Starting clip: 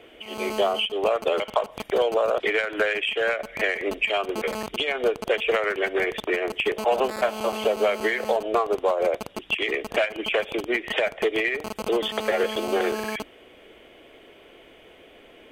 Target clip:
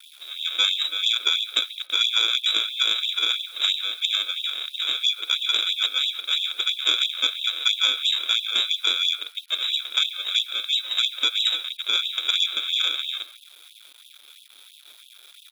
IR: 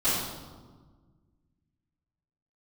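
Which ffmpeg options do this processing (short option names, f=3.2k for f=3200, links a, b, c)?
-filter_complex "[0:a]adynamicequalizer=threshold=0.0112:dfrequency=1900:dqfactor=4.4:tfrequency=1900:tqfactor=4.4:attack=5:release=100:ratio=0.375:range=2:mode=boostabove:tftype=bell,aresample=16000,acrusher=samples=16:mix=1:aa=0.000001,aresample=44100,lowpass=f=3.3k:t=q:w=0.5098,lowpass=f=3.3k:t=q:w=0.6013,lowpass=f=3.3k:t=q:w=0.9,lowpass=f=3.3k:t=q:w=2.563,afreqshift=-3900,acrusher=bits=7:mix=0:aa=0.000001,asplit=2[a][b];[b]adelay=138,lowpass=f=2.4k:p=1,volume=-12.5dB,asplit=2[c][d];[d]adelay=138,lowpass=f=2.4k:p=1,volume=0.29,asplit=2[e][f];[f]adelay=138,lowpass=f=2.4k:p=1,volume=0.29[g];[c][e][g]amix=inputs=3:normalize=0[h];[a][h]amix=inputs=2:normalize=0,aeval=exprs='0.631*(cos(1*acos(clip(val(0)/0.631,-1,1)))-cos(1*PI/2))+0.178*(cos(2*acos(clip(val(0)/0.631,-1,1)))-cos(2*PI/2))':c=same,afftfilt=real='re*gte(b*sr/1024,240*pow(2600/240,0.5+0.5*sin(2*PI*3*pts/sr)))':imag='im*gte(b*sr/1024,240*pow(2600/240,0.5+0.5*sin(2*PI*3*pts/sr)))':win_size=1024:overlap=0.75"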